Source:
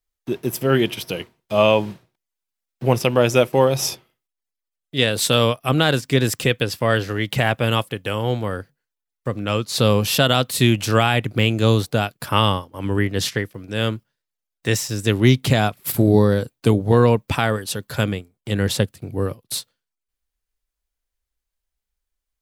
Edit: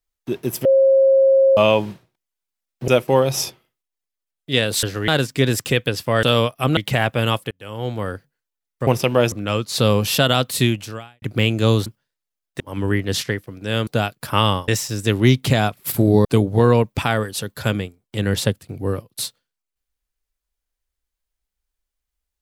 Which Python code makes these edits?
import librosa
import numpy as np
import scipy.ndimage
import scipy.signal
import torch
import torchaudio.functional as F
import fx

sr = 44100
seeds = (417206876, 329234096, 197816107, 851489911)

y = fx.edit(x, sr, fx.bleep(start_s=0.65, length_s=0.92, hz=538.0, db=-10.0),
    fx.move(start_s=2.88, length_s=0.45, to_s=9.32),
    fx.swap(start_s=5.28, length_s=0.54, other_s=6.97, other_length_s=0.25),
    fx.fade_in_span(start_s=7.96, length_s=0.54),
    fx.fade_out_span(start_s=10.6, length_s=0.62, curve='qua'),
    fx.swap(start_s=11.86, length_s=0.81, other_s=13.94, other_length_s=0.74),
    fx.cut(start_s=16.25, length_s=0.33), tone=tone)